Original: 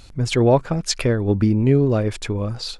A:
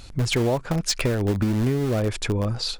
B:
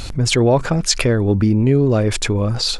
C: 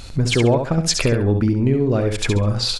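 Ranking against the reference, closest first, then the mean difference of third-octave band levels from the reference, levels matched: B, C, A; 3.5, 6.0, 8.0 dB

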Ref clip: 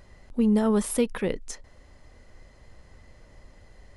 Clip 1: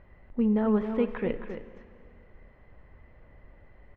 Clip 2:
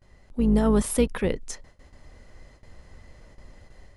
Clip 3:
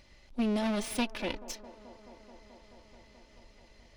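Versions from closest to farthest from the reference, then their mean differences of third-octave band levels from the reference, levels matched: 2, 1, 3; 2.0, 4.0, 7.0 dB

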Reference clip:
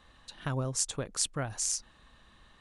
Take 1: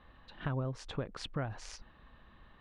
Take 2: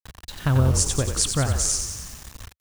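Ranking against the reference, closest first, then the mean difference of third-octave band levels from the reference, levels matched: 1, 2; 6.0, 9.0 dB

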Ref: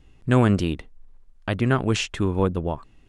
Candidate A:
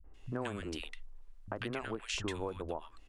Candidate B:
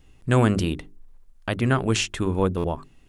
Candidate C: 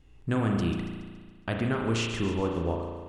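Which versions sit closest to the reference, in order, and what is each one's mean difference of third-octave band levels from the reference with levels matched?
B, C, A; 2.5, 7.0, 9.5 dB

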